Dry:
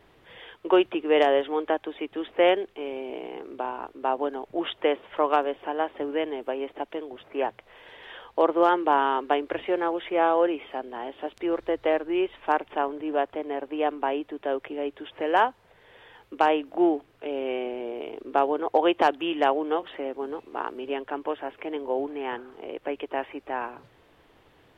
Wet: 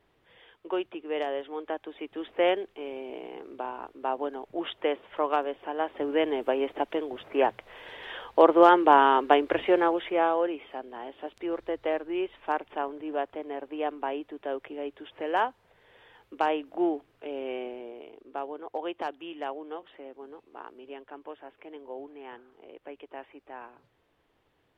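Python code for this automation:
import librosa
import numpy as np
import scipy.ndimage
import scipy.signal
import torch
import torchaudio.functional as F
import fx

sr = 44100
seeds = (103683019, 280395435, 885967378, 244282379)

y = fx.gain(x, sr, db=fx.line((1.37, -10.5), (2.24, -4.0), (5.69, -4.0), (6.31, 3.5), (9.78, 3.5), (10.43, -5.0), (17.63, -5.0), (18.17, -12.5)))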